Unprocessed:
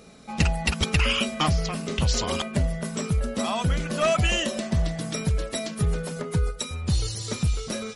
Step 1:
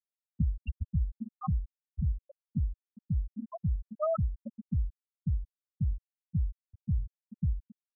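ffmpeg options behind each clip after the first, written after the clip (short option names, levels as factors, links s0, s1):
-af "aemphasis=mode=reproduction:type=75fm,afftfilt=real='re*gte(hypot(re,im),0.447)':imag='im*gte(hypot(re,im),0.447)':win_size=1024:overlap=0.75,volume=0.473"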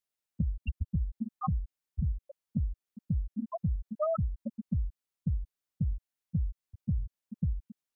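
-af "acompressor=threshold=0.0224:ratio=4,volume=1.78"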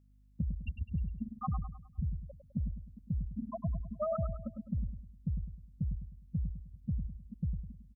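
-af "aeval=exprs='val(0)+0.00112*(sin(2*PI*50*n/s)+sin(2*PI*2*50*n/s)/2+sin(2*PI*3*50*n/s)/3+sin(2*PI*4*50*n/s)/4+sin(2*PI*5*50*n/s)/5)':c=same,aecho=1:1:103|206|309|412|515:0.398|0.171|0.0736|0.0317|0.0136,volume=0.631"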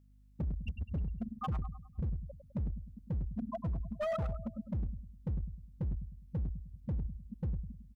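-af "volume=42.2,asoftclip=hard,volume=0.0237,volume=1.19"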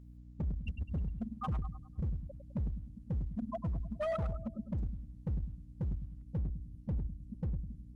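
-af "aeval=exprs='val(0)+0.00282*(sin(2*PI*60*n/s)+sin(2*PI*2*60*n/s)/2+sin(2*PI*3*60*n/s)/3+sin(2*PI*4*60*n/s)/4+sin(2*PI*5*60*n/s)/5)':c=same" -ar 48000 -c:a libopus -b:a 24k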